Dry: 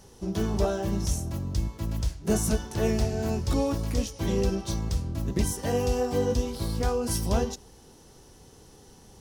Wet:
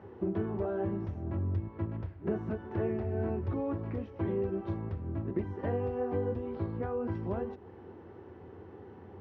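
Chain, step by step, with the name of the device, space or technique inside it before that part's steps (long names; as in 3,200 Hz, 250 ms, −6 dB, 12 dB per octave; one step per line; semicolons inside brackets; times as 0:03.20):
0:06.66–0:07.15: high-frequency loss of the air 83 metres
bass amplifier (downward compressor 6 to 1, threshold −34 dBFS, peak gain reduction 14 dB; loudspeaker in its box 89–2,000 Hz, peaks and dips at 92 Hz +9 dB, 140 Hz −9 dB, 360 Hz +8 dB)
level +3 dB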